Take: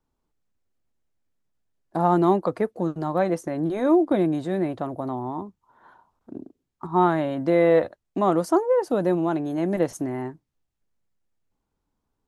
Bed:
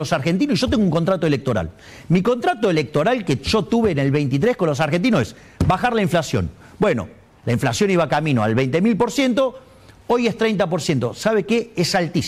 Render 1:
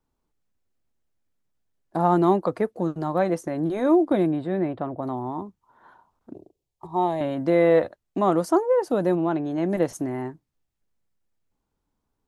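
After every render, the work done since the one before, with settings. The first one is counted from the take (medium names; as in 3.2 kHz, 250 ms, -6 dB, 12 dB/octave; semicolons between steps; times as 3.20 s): 4.31–5.03 s: boxcar filter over 7 samples; 6.34–7.21 s: static phaser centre 590 Hz, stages 4; 9.15–9.68 s: low-pass 3.3 kHz -> 6.7 kHz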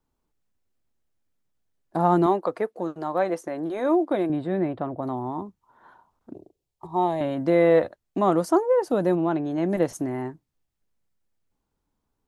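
2.26–4.30 s: tone controls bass -13 dB, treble -3 dB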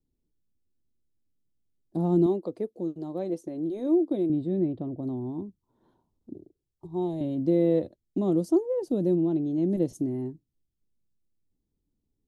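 FFT filter 340 Hz 0 dB, 740 Hz -16 dB, 1.5 kHz -27 dB, 3.6 kHz -9 dB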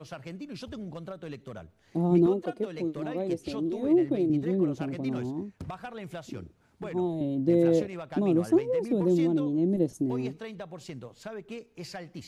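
add bed -22 dB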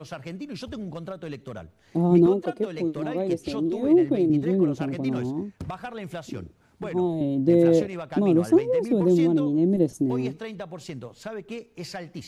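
trim +4.5 dB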